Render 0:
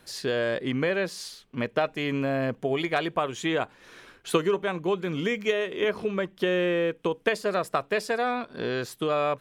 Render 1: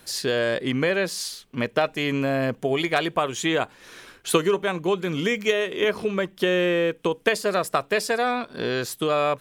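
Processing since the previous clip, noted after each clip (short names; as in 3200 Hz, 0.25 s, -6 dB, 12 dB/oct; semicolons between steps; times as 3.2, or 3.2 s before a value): high shelf 4700 Hz +8.5 dB; gain +3 dB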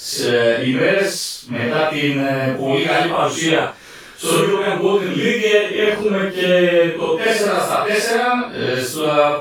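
phase scrambler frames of 0.2 s; gain +7 dB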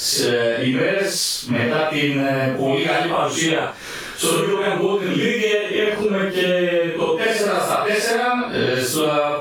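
compressor 6:1, threshold -24 dBFS, peak gain reduction 15 dB; gain +7.5 dB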